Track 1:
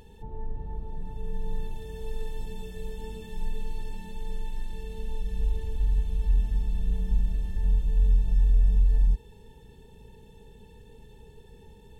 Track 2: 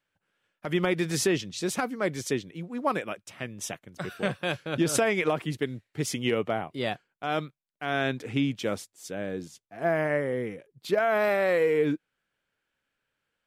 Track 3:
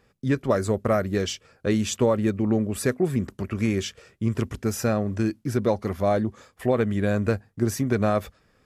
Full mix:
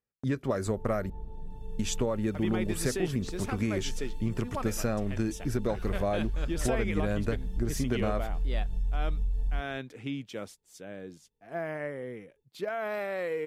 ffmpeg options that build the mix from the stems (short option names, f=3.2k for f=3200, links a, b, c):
-filter_complex "[0:a]equalizer=f=1.9k:w=2.7:g=-8.5,adelay=450,volume=-5.5dB[a];[1:a]adelay=1700,volume=-9dB[b];[2:a]volume=-3dB,asplit=3[c][d][e];[c]atrim=end=1.1,asetpts=PTS-STARTPTS,afade=t=out:st=1.096:d=0.004:c=hsin[f];[d]atrim=start=1.1:end=1.79,asetpts=PTS-STARTPTS,volume=0[g];[e]atrim=start=1.79,asetpts=PTS-STARTPTS,afade=t=in:d=0.004:c=hsin[h];[f][g][h]concat=n=3:v=0:a=1[i];[a][i]amix=inputs=2:normalize=0,agate=range=-28dB:threshold=-48dB:ratio=16:detection=peak,acompressor=threshold=-25dB:ratio=6,volume=0dB[j];[b][j]amix=inputs=2:normalize=0"